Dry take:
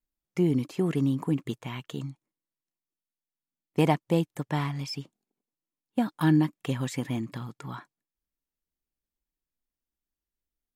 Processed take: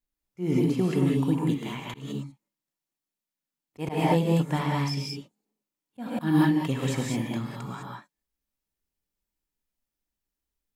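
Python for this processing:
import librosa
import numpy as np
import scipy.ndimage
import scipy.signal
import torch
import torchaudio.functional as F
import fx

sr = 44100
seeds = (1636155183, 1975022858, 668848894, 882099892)

y = fx.rev_gated(x, sr, seeds[0], gate_ms=230, shape='rising', drr_db=-1.5)
y = fx.auto_swell(y, sr, attack_ms=164.0)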